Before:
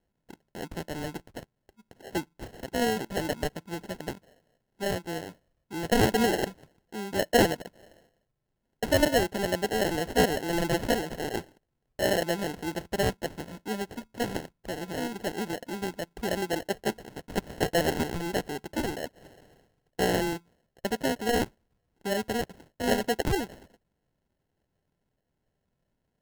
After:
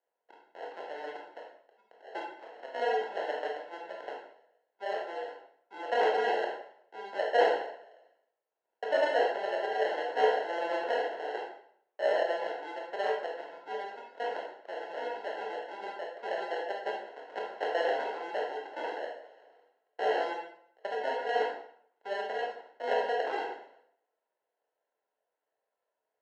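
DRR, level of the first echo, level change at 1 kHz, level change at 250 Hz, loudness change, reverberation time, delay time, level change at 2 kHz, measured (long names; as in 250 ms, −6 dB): −2.0 dB, no echo audible, +1.0 dB, −18.5 dB, −3.5 dB, 0.60 s, no echo audible, −3.0 dB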